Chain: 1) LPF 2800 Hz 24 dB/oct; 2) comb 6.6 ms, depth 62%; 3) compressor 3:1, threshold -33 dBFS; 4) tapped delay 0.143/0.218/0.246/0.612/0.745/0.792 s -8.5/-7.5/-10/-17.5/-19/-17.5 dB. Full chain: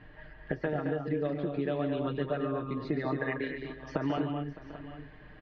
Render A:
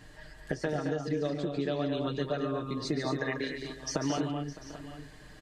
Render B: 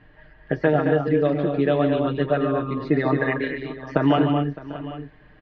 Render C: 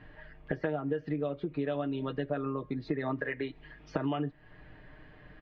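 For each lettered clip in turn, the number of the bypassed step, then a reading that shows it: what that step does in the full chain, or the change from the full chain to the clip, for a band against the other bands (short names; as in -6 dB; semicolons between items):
1, 4 kHz band +9.0 dB; 3, mean gain reduction 8.0 dB; 4, echo-to-direct -3.5 dB to none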